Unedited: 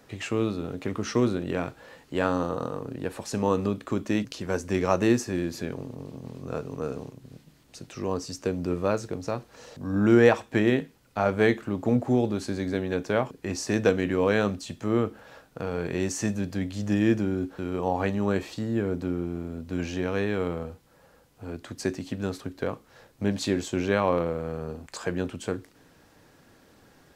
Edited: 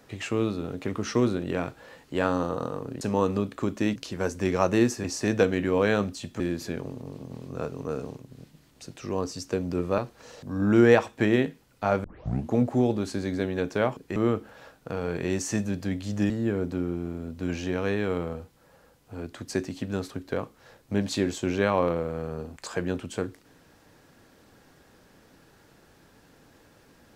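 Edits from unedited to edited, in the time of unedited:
3.01–3.30 s: delete
8.91–9.32 s: delete
11.38 s: tape start 0.49 s
13.50–14.86 s: move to 5.33 s
17.00–18.60 s: delete

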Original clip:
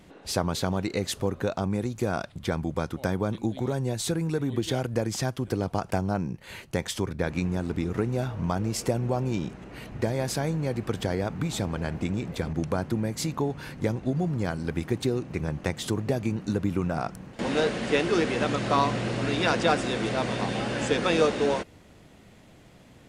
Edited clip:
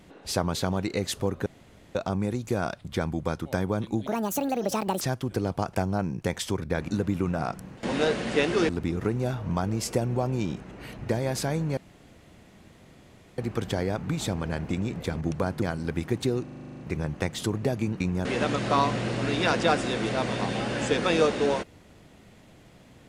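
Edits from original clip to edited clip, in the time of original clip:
1.46 s: insert room tone 0.49 s
3.58–5.17 s: speed 169%
6.37–6.70 s: delete
7.37–7.62 s: swap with 16.44–18.25 s
10.70 s: insert room tone 1.61 s
12.94–14.42 s: delete
15.23 s: stutter 0.04 s, 10 plays

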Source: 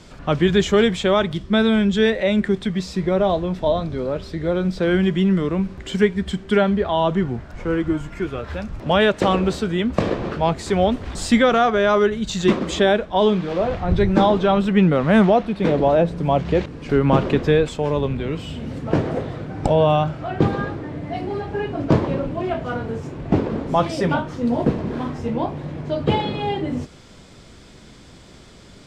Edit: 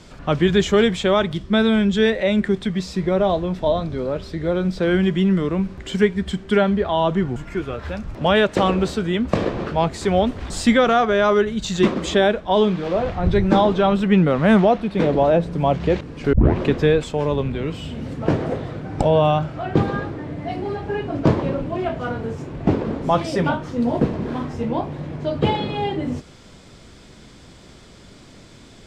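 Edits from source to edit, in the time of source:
7.36–8.01 s: delete
16.98 s: tape start 0.29 s

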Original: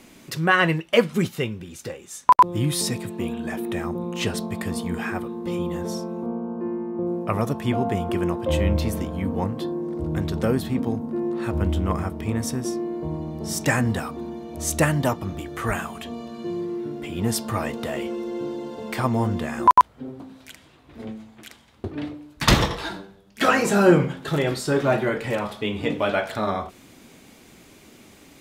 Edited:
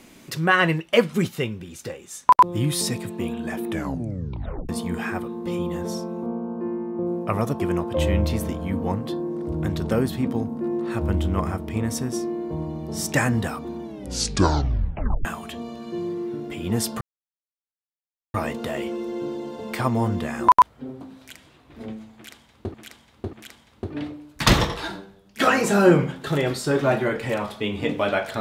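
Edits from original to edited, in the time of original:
3.69 s: tape stop 1.00 s
7.60–8.12 s: delete
14.35 s: tape stop 1.42 s
17.53 s: insert silence 1.33 s
21.34–21.93 s: loop, 3 plays

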